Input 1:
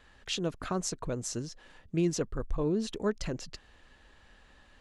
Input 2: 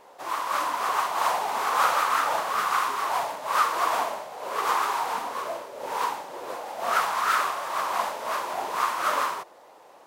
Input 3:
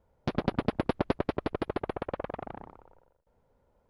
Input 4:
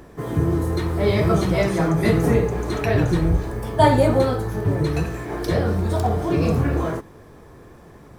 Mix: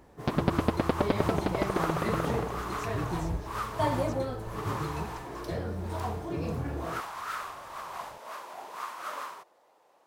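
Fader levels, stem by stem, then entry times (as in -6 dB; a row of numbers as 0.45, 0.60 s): -16.0, -12.5, +1.5, -13.5 dB; 1.95, 0.00, 0.00, 0.00 s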